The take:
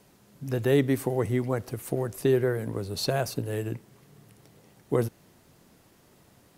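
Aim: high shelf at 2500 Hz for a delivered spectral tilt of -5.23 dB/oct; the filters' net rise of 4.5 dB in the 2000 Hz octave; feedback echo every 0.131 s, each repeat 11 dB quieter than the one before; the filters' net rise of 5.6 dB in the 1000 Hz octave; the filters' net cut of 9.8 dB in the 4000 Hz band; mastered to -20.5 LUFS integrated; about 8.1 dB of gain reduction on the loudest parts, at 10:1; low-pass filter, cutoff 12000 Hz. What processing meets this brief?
LPF 12000 Hz; bell 1000 Hz +8 dB; bell 2000 Hz +7.5 dB; high shelf 2500 Hz -8.5 dB; bell 4000 Hz -6.5 dB; compressor 10:1, threshold -25 dBFS; feedback echo 0.131 s, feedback 28%, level -11 dB; gain +11.5 dB

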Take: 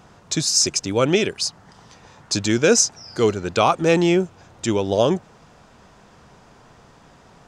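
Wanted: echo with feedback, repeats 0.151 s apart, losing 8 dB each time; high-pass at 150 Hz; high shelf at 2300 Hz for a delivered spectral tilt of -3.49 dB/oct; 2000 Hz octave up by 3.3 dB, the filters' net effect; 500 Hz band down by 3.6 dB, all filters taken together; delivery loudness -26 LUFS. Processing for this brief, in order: HPF 150 Hz; bell 500 Hz -4.5 dB; bell 2000 Hz +8 dB; high shelf 2300 Hz -6 dB; feedback echo 0.151 s, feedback 40%, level -8 dB; gain -4.5 dB

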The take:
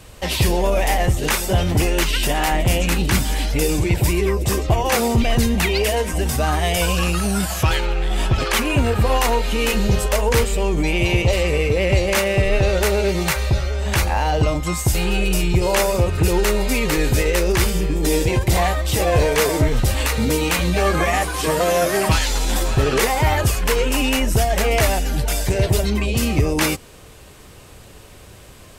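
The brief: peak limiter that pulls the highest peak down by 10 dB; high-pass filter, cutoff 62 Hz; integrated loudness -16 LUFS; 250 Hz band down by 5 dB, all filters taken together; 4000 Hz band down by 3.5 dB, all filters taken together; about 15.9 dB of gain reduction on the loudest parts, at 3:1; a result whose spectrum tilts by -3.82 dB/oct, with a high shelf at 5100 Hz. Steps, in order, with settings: HPF 62 Hz; bell 250 Hz -7.5 dB; bell 4000 Hz -8 dB; high shelf 5100 Hz +6.5 dB; compressor 3:1, threshold -37 dBFS; gain +21 dB; limiter -6.5 dBFS

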